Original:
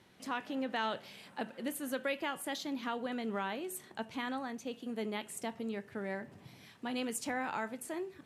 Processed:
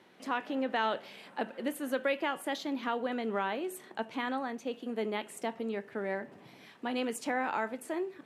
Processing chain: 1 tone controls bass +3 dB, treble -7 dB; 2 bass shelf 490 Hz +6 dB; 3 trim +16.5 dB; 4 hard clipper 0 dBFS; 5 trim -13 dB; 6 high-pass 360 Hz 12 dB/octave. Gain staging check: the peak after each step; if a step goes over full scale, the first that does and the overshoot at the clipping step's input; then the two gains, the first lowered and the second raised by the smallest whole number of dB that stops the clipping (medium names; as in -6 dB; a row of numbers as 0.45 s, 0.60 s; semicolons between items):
-22.5 dBFS, -20.5 dBFS, -4.0 dBFS, -4.0 dBFS, -17.0 dBFS, -17.0 dBFS; nothing clips